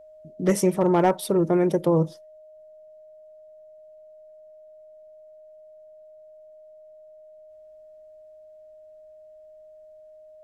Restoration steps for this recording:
clipped peaks rebuilt −11.5 dBFS
notch filter 620 Hz, Q 30

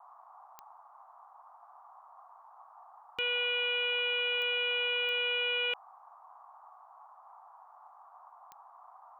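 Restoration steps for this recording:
click removal
noise reduction from a noise print 25 dB

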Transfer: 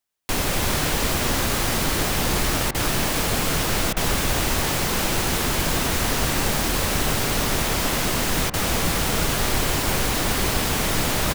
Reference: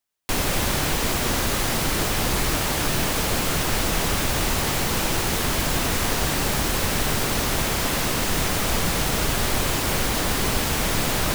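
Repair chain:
repair the gap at 0:02.71/0:03.93/0:08.50, 35 ms
echo removal 341 ms −7.5 dB

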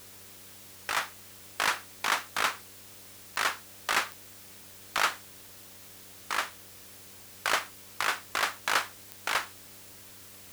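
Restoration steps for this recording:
click removal
hum removal 97 Hz, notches 6
noise reduction from a noise print 27 dB

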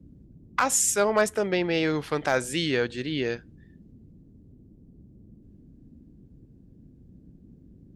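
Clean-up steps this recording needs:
clipped peaks rebuilt −11.5 dBFS
noise reduction from a noise print 19 dB

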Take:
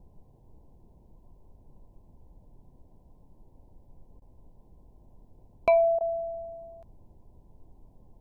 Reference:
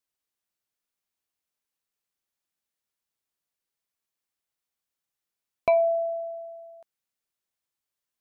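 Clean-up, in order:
repair the gap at 0:04.20/0:05.99, 16 ms
noise reduction from a noise print 30 dB

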